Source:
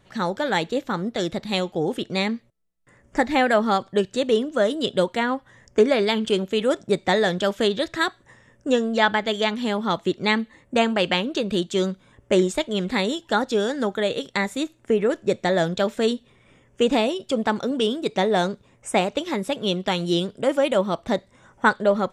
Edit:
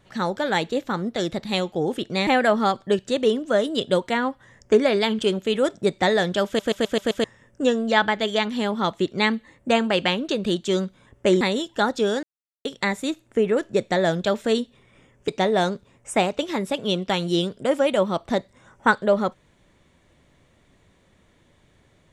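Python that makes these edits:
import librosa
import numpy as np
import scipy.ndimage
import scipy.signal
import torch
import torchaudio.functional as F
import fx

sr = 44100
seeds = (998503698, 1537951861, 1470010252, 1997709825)

y = fx.edit(x, sr, fx.cut(start_s=2.27, length_s=1.06),
    fx.stutter_over(start_s=7.52, slice_s=0.13, count=6),
    fx.cut(start_s=12.47, length_s=0.47),
    fx.silence(start_s=13.76, length_s=0.42),
    fx.cut(start_s=16.81, length_s=1.25), tone=tone)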